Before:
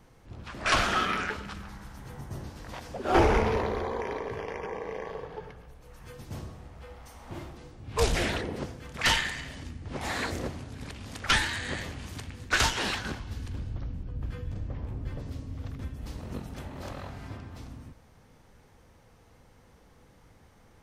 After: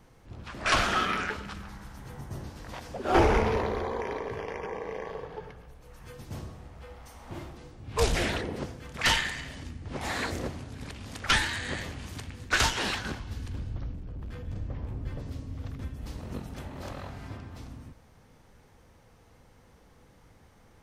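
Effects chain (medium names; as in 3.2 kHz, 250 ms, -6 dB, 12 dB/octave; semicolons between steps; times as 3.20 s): 13.93–14.48 s: hard clipper -35.5 dBFS, distortion -25 dB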